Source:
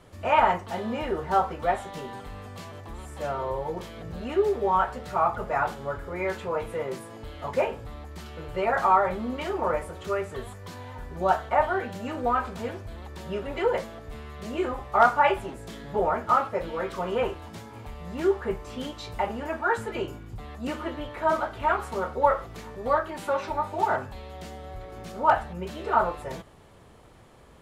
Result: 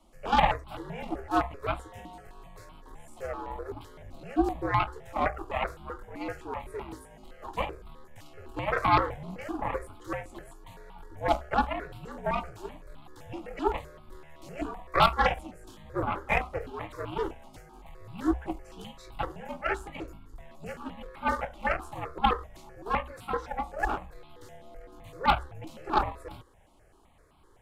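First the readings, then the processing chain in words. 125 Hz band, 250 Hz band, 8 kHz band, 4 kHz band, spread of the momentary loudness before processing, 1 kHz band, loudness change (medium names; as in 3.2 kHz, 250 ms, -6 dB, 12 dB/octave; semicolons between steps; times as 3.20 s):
-1.0 dB, -1.5 dB, no reading, +1.5 dB, 17 LU, -4.5 dB, -4.0 dB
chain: Chebyshev shaper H 3 -19 dB, 4 -11 dB, 7 -35 dB, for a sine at -8 dBFS; frequency shift -69 Hz; stepped phaser 7.8 Hz 450–1800 Hz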